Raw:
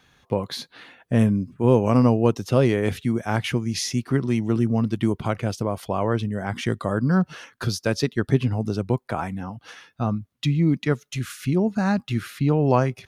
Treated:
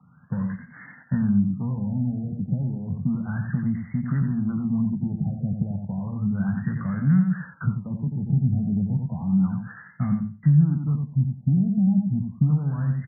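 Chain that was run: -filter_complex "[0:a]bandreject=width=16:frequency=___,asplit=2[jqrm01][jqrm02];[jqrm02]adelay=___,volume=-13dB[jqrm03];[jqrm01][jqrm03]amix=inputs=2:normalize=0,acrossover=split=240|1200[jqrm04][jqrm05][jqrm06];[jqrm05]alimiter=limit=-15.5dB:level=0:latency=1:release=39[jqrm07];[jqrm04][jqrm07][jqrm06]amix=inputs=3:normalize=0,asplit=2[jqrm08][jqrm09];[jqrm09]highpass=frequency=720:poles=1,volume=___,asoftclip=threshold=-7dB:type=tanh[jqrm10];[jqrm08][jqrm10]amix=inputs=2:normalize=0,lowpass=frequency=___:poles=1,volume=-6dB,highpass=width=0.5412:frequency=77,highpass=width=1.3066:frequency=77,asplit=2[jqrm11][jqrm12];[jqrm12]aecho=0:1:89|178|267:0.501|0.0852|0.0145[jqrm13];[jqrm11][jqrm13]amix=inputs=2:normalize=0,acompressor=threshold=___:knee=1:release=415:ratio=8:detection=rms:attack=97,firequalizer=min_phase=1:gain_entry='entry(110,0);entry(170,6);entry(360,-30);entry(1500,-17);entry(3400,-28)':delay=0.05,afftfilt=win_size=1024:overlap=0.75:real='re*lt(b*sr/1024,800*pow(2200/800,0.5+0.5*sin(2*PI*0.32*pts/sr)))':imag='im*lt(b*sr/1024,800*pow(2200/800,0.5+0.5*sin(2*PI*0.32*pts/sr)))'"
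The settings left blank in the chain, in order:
3500, 21, 28dB, 7500, -16dB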